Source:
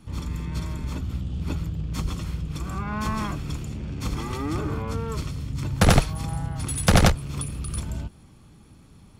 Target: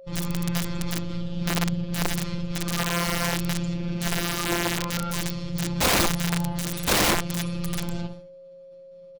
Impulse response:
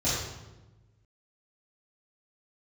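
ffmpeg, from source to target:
-filter_complex "[0:a]acrossover=split=3700[s0][s1];[s1]asoftclip=type=tanh:threshold=0.0531[s2];[s0][s2]amix=inputs=2:normalize=0,agate=range=0.0224:threshold=0.0126:ratio=3:detection=peak,asplit=2[s3][s4];[s4]adelay=62,lowpass=f=1100:p=1,volume=0.501,asplit=2[s5][s6];[s6]adelay=62,lowpass=f=1100:p=1,volume=0.32,asplit=2[s7][s8];[s8]adelay=62,lowpass=f=1100:p=1,volume=0.32,asplit=2[s9][s10];[s10]adelay=62,lowpass=f=1100:p=1,volume=0.32[s11];[s5][s7][s9][s11]amix=inputs=4:normalize=0[s12];[s3][s12]amix=inputs=2:normalize=0,afftfilt=real='hypot(re,im)*cos(PI*b)':imag='0':win_size=1024:overlap=0.75,aeval=exprs='val(0)+0.00316*sin(2*PI*540*n/s)':c=same,lowpass=f=4700:t=q:w=1.8,acontrast=73,aeval=exprs='(mod(6.31*val(0)+1,2)-1)/6.31':c=same"

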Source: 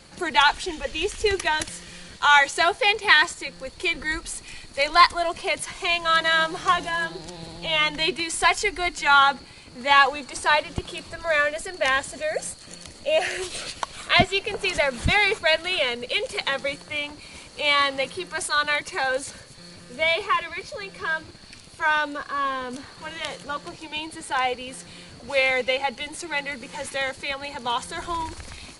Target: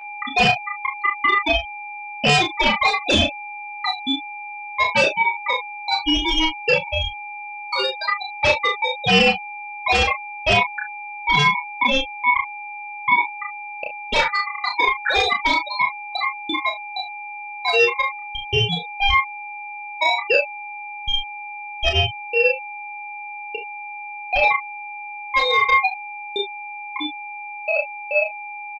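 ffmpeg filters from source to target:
-filter_complex "[0:a]bandreject=f=60:t=h:w=6,bandreject=f=120:t=h:w=6,bandreject=f=180:t=h:w=6,bandreject=f=240:t=h:w=6,bandreject=f=300:t=h:w=6,bandreject=f=360:t=h:w=6,afftfilt=real='re*gte(hypot(re,im),0.447)':imag='im*gte(hypot(re,im),0.447)':win_size=1024:overlap=0.75,agate=range=0.00562:threshold=0.01:ratio=16:detection=peak,equalizer=f=900:w=0.4:g=2.5,acrossover=split=82|1600|5200[s0][s1][s2][s3];[s0]acompressor=threshold=0.00708:ratio=4[s4];[s1]acompressor=threshold=0.141:ratio=4[s5];[s2]acompressor=threshold=0.0178:ratio=4[s6];[s3]acompressor=threshold=0.00141:ratio=4[s7];[s4][s5][s6][s7]amix=inputs=4:normalize=0,aeval=exprs='val(0)+0.00794*sin(2*PI*770*n/s)':c=same,asplit=2[s8][s9];[s9]adelay=31,volume=0.562[s10];[s8][s10]amix=inputs=2:normalize=0,aeval=exprs='0.422*(cos(1*acos(clip(val(0)/0.422,-1,1)))-cos(1*PI/2))+0.00237*(cos(4*acos(clip(val(0)/0.422,-1,1)))-cos(4*PI/2))+0.15*(cos(5*acos(clip(val(0)/0.422,-1,1)))-cos(5*PI/2))+0.00266*(cos(6*acos(clip(val(0)/0.422,-1,1)))-cos(6*PI/2))':c=same,asplit=2[s11][s12];[s12]aecho=0:1:29|39:0.376|0.422[s13];[s11][s13]amix=inputs=2:normalize=0,aeval=exprs='val(0)*sin(2*PI*1600*n/s)':c=same"

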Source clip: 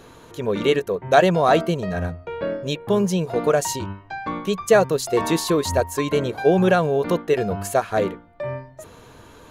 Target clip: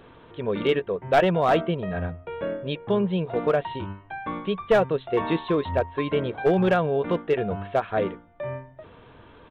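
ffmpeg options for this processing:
-af "aresample=8000,aresample=44100,aeval=exprs='clip(val(0),-1,0.282)':c=same,volume=0.668"

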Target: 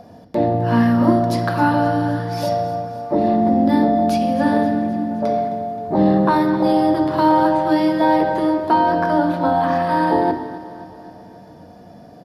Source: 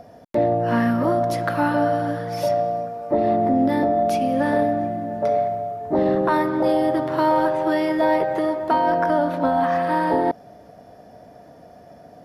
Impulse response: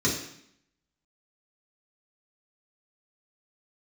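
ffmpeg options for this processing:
-filter_complex "[0:a]equalizer=f=4400:w=1.5:g=2.5,aecho=1:1:263|526|789|1052|1315|1578:0.15|0.0883|0.0521|0.0307|0.0181|0.0107,asplit=2[s0][s1];[1:a]atrim=start_sample=2205,asetrate=33957,aresample=44100[s2];[s1][s2]afir=irnorm=-1:irlink=0,volume=0.141[s3];[s0][s3]amix=inputs=2:normalize=0"

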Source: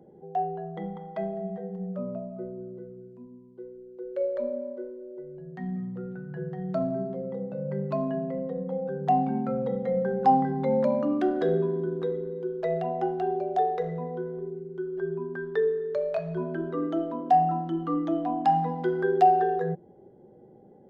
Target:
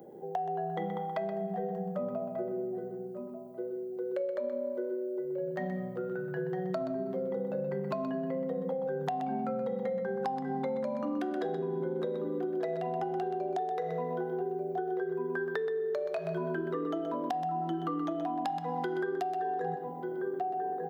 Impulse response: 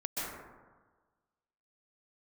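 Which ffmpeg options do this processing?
-filter_complex "[0:a]aemphasis=mode=production:type=riaa,asplit=2[s0][s1];[s1]adelay=1189,lowpass=f=880:p=1,volume=0.251,asplit=2[s2][s3];[s3]adelay=1189,lowpass=f=880:p=1,volume=0.23,asplit=2[s4][s5];[s5]adelay=1189,lowpass=f=880:p=1,volume=0.23[s6];[s2][s4][s6]amix=inputs=3:normalize=0[s7];[s0][s7]amix=inputs=2:normalize=0,acrossover=split=120[s8][s9];[s9]acompressor=threshold=0.0224:ratio=6[s10];[s8][s10]amix=inputs=2:normalize=0,highshelf=f=2400:g=-9.5,bandreject=f=189.1:t=h:w=4,bandreject=f=378.2:t=h:w=4,bandreject=f=567.3:t=h:w=4,bandreject=f=756.4:t=h:w=4,bandreject=f=945.5:t=h:w=4,bandreject=f=1134.6:t=h:w=4,bandreject=f=1323.7:t=h:w=4,bandreject=f=1512.8:t=h:w=4,bandreject=f=1701.9:t=h:w=4,bandreject=f=1891:t=h:w=4,bandreject=f=2080.1:t=h:w=4,bandreject=f=2269.2:t=h:w=4,bandreject=f=2458.3:t=h:w=4,bandreject=f=2647.4:t=h:w=4,bandreject=f=2836.5:t=h:w=4,bandreject=f=3025.6:t=h:w=4,bandreject=f=3214.7:t=h:w=4,bandreject=f=3403.8:t=h:w=4,bandreject=f=3592.9:t=h:w=4,bandreject=f=3782:t=h:w=4,bandreject=f=3971.1:t=h:w=4,bandreject=f=4160.2:t=h:w=4,asplit=2[s11][s12];[s12]aecho=0:1:126:0.398[s13];[s11][s13]amix=inputs=2:normalize=0,acompressor=threshold=0.0126:ratio=6,volume=2.51"

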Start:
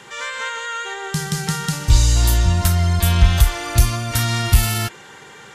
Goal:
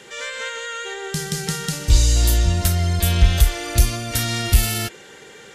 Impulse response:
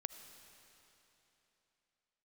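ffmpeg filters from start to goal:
-af "equalizer=f=125:t=o:w=1:g=-6,equalizer=f=500:t=o:w=1:g=5,equalizer=f=1000:t=o:w=1:g=-10"

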